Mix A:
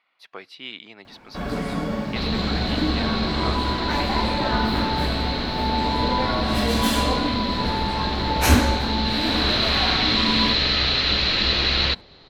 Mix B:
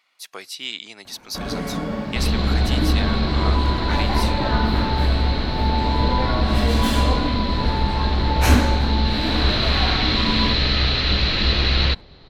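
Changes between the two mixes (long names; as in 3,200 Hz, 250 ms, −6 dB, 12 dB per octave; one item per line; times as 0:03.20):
speech: remove high-frequency loss of the air 380 metres
second sound: add low-shelf EQ 160 Hz +10 dB
master: add high-shelf EQ 5,700 Hz −5 dB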